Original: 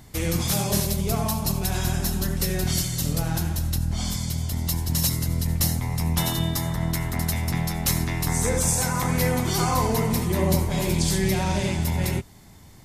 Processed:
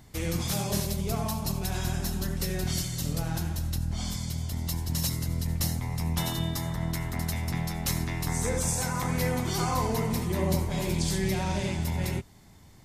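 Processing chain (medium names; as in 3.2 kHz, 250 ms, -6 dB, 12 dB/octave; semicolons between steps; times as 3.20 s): peaking EQ 12 kHz -3.5 dB 0.92 oct; trim -5 dB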